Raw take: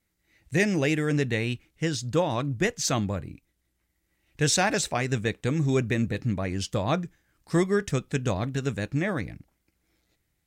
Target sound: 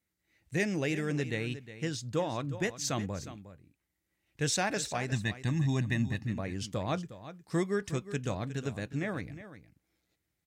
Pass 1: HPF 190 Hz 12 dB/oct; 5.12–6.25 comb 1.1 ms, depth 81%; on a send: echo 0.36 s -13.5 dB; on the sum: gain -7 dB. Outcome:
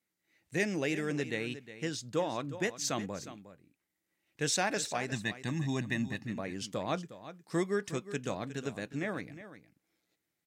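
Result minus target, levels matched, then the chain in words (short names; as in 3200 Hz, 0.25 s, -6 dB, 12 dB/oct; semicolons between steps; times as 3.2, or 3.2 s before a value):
125 Hz band -5.0 dB
HPF 64 Hz 12 dB/oct; 5.12–6.25 comb 1.1 ms, depth 81%; on a send: echo 0.36 s -13.5 dB; on the sum: gain -7 dB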